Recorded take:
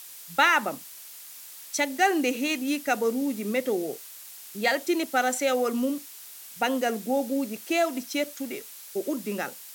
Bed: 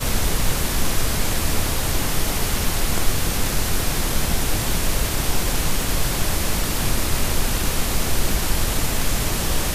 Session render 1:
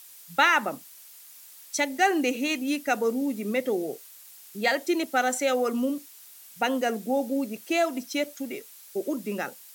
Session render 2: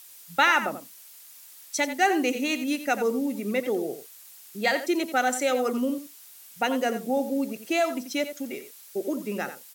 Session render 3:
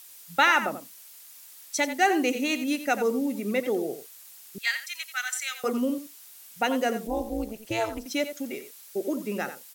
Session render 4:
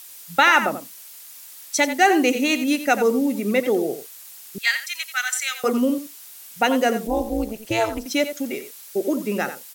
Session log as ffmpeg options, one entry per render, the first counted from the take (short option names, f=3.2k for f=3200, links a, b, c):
-af "afftdn=nr=6:nf=-45"
-filter_complex "[0:a]asplit=2[a][b];[b]adelay=87.46,volume=-11dB,highshelf=f=4k:g=-1.97[c];[a][c]amix=inputs=2:normalize=0"
-filter_complex "[0:a]asettb=1/sr,asplit=3[a][b][c];[a]atrim=end=4.584[d];[b]atrim=start=4.58:end=5.64,asetpts=PTS-STARTPTS,afade=t=in:d=0.004:c=qsin,afade=t=out:st=1.056:d=0.004:c=qsin,highpass=f=1.5k:w=0.5412,highpass=f=1.5k:w=1.3066[e];[c]atrim=start=5.636[f];[d][e]acrossfade=d=0.004:c1=hsin:c2=qsin[g];[g][f]acrossfade=d=0.004:c1=qsin:c2=hsin,asettb=1/sr,asplit=3[h][i][j];[h]atrim=end=7.074[k];[i]atrim=start=7.07:end=8.06,asetpts=PTS-STARTPTS,afade=t=in:d=0.004:c=qsin,afade=t=out:st=0.986:d=0.004:c=qsin,tremolo=f=220:d=0.919[l];[j]atrim=start=8.056[m];[k][l]acrossfade=d=0.004:c1=hsin:c2=qsin[n];[n][m]acrossfade=d=0.004:c1=qsin:c2=hsin"
-af "volume=6.5dB,alimiter=limit=-3dB:level=0:latency=1"